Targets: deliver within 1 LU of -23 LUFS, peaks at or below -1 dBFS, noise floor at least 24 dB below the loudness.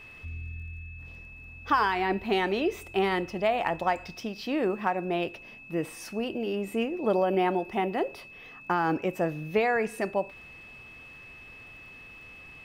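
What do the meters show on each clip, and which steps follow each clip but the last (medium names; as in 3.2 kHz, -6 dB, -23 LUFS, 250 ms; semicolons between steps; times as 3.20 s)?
tick rate 27 per s; steady tone 2.6 kHz; tone level -46 dBFS; loudness -29.0 LUFS; peak level -12.0 dBFS; loudness target -23.0 LUFS
-> de-click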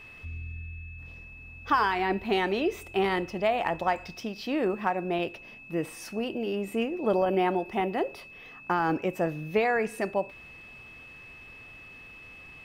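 tick rate 0 per s; steady tone 2.6 kHz; tone level -46 dBFS
-> band-stop 2.6 kHz, Q 30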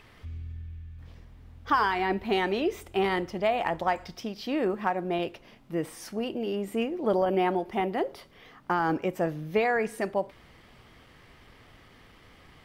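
steady tone not found; loudness -29.0 LUFS; peak level -12.0 dBFS; loudness target -23.0 LUFS
-> trim +6 dB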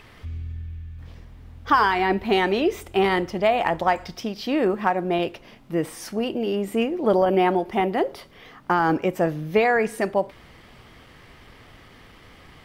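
loudness -23.0 LUFS; peak level -6.0 dBFS; noise floor -49 dBFS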